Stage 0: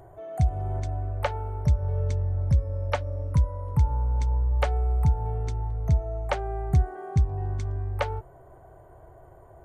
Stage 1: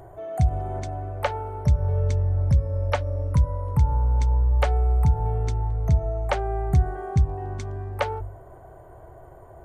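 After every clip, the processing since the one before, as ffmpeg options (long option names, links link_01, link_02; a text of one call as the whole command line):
ffmpeg -i in.wav -filter_complex "[0:a]bandreject=frequency=49.17:width_type=h:width=4,bandreject=frequency=98.34:width_type=h:width=4,bandreject=frequency=147.51:width_type=h:width=4,asplit=2[link_01][link_02];[link_02]alimiter=limit=-20.5dB:level=0:latency=1,volume=-3dB[link_03];[link_01][link_03]amix=inputs=2:normalize=0" out.wav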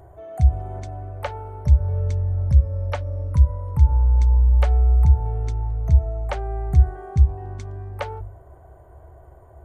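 ffmpeg -i in.wav -af "equalizer=frequency=69:width_type=o:width=0.56:gain=12.5,volume=-4dB" out.wav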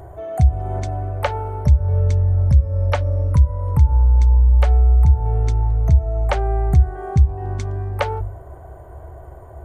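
ffmpeg -i in.wav -af "acompressor=threshold=-23dB:ratio=2,volume=8.5dB" out.wav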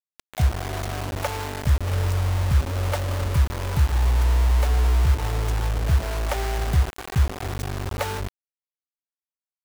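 ffmpeg -i in.wav -af "aecho=1:1:689:0.0891,acrusher=bits=3:mix=0:aa=0.000001,volume=-6.5dB" out.wav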